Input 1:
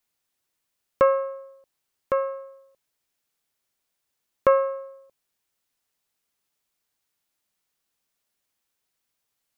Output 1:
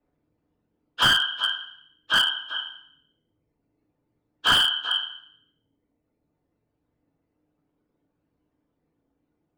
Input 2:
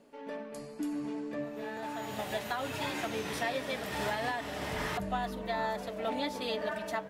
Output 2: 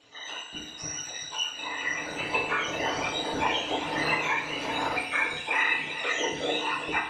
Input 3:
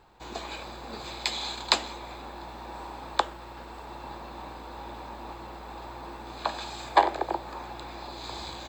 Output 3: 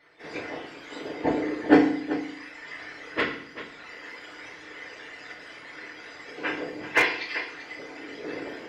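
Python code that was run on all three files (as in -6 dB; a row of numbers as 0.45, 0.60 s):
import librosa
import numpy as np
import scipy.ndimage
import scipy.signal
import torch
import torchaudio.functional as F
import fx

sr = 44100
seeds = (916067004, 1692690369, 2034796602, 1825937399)

y = fx.octave_mirror(x, sr, pivot_hz=1300.0)
y = scipy.signal.sosfilt(scipy.signal.bessel(2, 440.0, 'highpass', norm='mag', fs=sr, output='sos'), y)
y = fx.dereverb_blind(y, sr, rt60_s=1.6)
y = scipy.signal.sosfilt(scipy.signal.butter(2, 4000.0, 'lowpass', fs=sr, output='sos'), y)
y = fx.chorus_voices(y, sr, voices=2, hz=0.65, base_ms=25, depth_ms=1.9, mix_pct=30)
y = fx.whisperise(y, sr, seeds[0])
y = y + 10.0 ** (-13.0 / 20.0) * np.pad(y, (int(388 * sr / 1000.0), 0))[:len(y)]
y = fx.rev_fdn(y, sr, rt60_s=0.65, lf_ratio=1.35, hf_ratio=1.0, size_ms=20.0, drr_db=0.0)
y = fx.slew_limit(y, sr, full_power_hz=160.0)
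y = y * 10.0 ** (-30 / 20.0) / np.sqrt(np.mean(np.square(y)))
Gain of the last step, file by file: +8.0, +11.5, +6.5 dB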